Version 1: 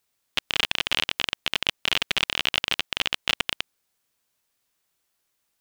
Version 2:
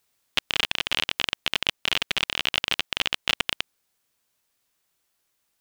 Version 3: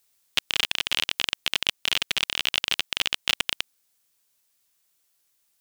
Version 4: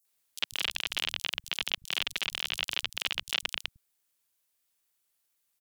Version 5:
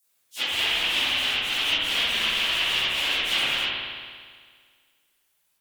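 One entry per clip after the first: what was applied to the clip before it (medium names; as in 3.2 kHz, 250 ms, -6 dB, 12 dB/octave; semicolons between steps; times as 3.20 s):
gain riding within 4 dB 0.5 s
treble shelf 3.3 kHz +9.5 dB; trim -4 dB
three bands offset in time highs, mids, lows 50/150 ms, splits 150/5700 Hz; wow and flutter 27 cents; trim -6 dB
phase randomisation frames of 100 ms; reverberation RT60 1.8 s, pre-delay 56 ms, DRR -2.5 dB; trim +6 dB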